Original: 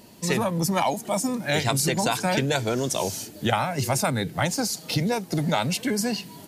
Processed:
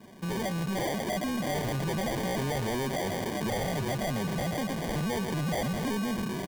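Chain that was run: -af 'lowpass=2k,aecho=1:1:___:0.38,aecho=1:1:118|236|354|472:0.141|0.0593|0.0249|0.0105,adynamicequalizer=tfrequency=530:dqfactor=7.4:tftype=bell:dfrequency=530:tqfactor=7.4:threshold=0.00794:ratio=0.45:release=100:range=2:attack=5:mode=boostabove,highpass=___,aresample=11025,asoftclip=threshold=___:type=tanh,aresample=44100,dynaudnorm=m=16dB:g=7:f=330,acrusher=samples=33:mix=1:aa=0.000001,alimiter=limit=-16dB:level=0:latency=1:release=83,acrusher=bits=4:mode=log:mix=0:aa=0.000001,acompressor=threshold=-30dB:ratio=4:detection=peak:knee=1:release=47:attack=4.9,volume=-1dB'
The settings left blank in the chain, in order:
5, 48, -21.5dB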